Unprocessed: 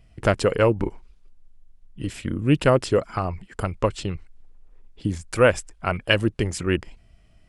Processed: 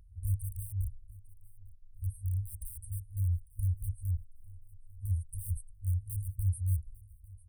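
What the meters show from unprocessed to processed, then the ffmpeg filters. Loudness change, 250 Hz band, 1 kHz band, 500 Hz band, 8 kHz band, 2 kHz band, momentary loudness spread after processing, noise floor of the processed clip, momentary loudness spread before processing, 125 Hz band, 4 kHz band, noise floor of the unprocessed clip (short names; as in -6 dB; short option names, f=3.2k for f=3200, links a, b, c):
-12.5 dB, under -35 dB, under -40 dB, under -40 dB, -9.5 dB, under -40 dB, 21 LU, -56 dBFS, 12 LU, -5.0 dB, under -40 dB, -55 dBFS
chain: -filter_complex "[0:a]equalizer=f=630:t=o:w=0.33:g=-7,equalizer=f=1.25k:t=o:w=0.33:g=-7,equalizer=f=8k:t=o:w=0.33:g=-9,asplit=2[a][b];[b]aeval=exprs='(mod(8.91*val(0)+1,2)-1)/8.91':c=same,volume=-4dB[c];[a][c]amix=inputs=2:normalize=0,equalizer=f=130:t=o:w=2.3:g=9.5,aecho=1:1:849|1698:0.0794|0.0246,afftfilt=real='re*(1-between(b*sr/4096,100,8200))':imag='im*(1-between(b*sr/4096,100,8200))':win_size=4096:overlap=0.75,volume=-9dB"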